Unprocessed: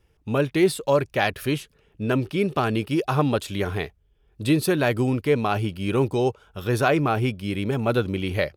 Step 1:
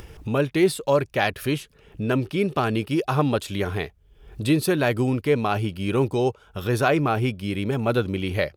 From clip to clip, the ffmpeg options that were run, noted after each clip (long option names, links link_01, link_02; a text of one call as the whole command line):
ffmpeg -i in.wav -af "acompressor=mode=upward:threshold=-25dB:ratio=2.5" out.wav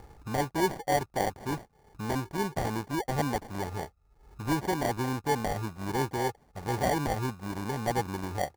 ffmpeg -i in.wav -af "acrusher=samples=34:mix=1:aa=0.000001,equalizer=frequency=800:width_type=o:width=0.33:gain=8,equalizer=frequency=1250:width_type=o:width=0.33:gain=5,equalizer=frequency=3150:width_type=o:width=0.33:gain=-6,volume=-9dB" out.wav